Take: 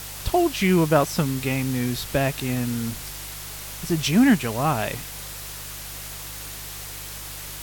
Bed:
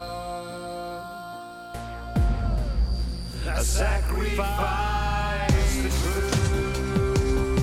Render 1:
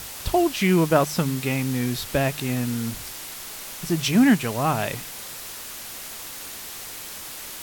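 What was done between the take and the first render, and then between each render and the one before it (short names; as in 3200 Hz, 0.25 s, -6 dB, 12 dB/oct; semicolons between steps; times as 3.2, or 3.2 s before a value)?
de-hum 50 Hz, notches 3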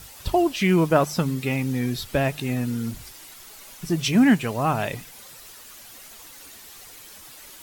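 denoiser 10 dB, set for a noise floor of -37 dBFS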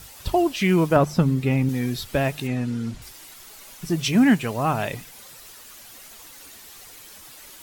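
0.96–1.69 tilt -2 dB/oct; 2.47–3.02 air absorption 63 m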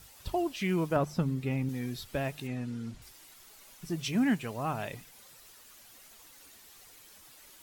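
gain -10.5 dB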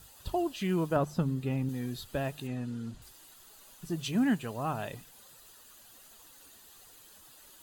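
bell 2200 Hz -10.5 dB 0.25 oct; notch 5500 Hz, Q 7.5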